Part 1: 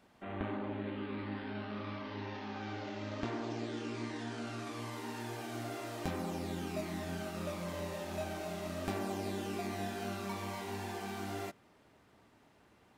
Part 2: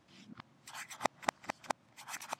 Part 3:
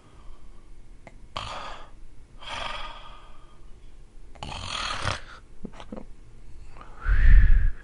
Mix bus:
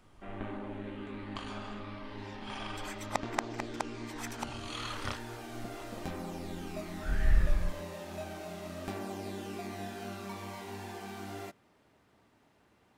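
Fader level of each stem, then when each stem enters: −2.0, +0.5, −10.0 decibels; 0.00, 2.10, 0.00 seconds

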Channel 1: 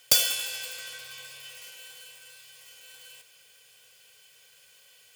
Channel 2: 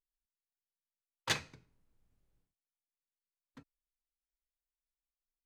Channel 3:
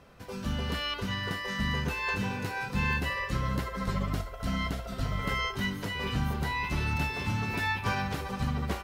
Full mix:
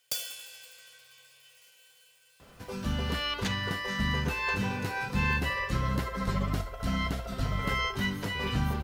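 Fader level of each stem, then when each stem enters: −13.0, −4.0, +1.0 decibels; 0.00, 2.15, 2.40 seconds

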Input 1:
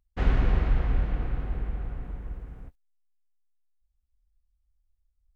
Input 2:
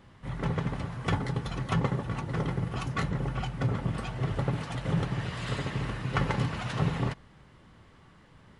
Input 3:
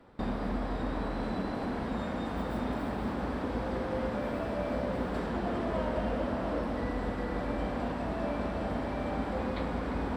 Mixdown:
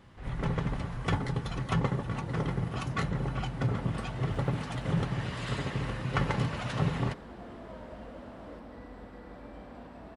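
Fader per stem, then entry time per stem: −18.0, −1.0, −13.5 decibels; 0.00, 0.00, 1.95 seconds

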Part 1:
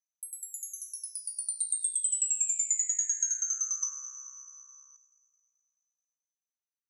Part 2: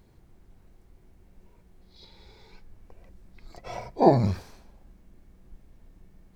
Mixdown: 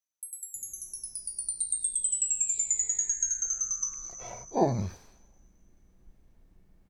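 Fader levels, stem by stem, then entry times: +0.5, −7.0 decibels; 0.00, 0.55 seconds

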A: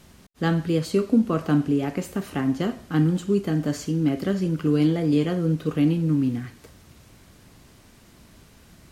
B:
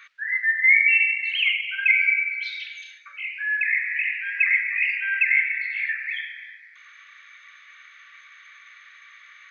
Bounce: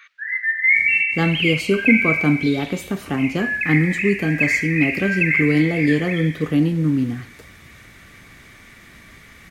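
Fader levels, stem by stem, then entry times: +3.0, +0.5 decibels; 0.75, 0.00 seconds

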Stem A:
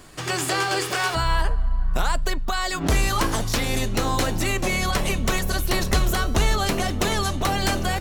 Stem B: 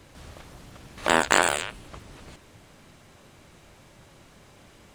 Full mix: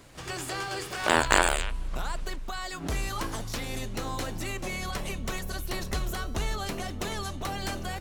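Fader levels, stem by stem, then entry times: −10.5, −2.0 decibels; 0.00, 0.00 seconds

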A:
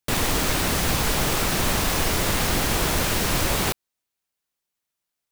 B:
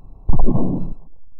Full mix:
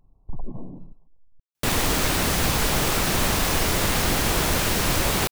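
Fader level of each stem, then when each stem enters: +0.5, −18.0 decibels; 1.55, 0.00 seconds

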